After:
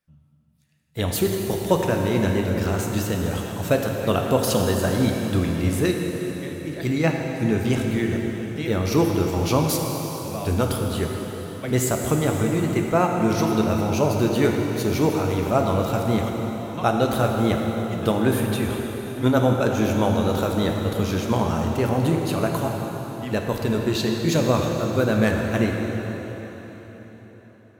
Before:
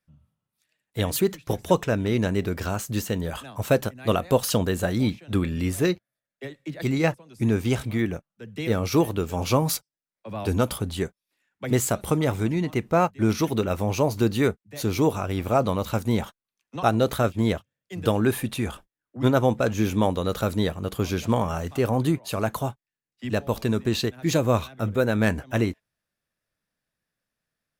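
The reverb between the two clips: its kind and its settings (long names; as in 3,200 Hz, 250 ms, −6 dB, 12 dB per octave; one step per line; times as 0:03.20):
dense smooth reverb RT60 4.6 s, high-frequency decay 0.85×, DRR 1 dB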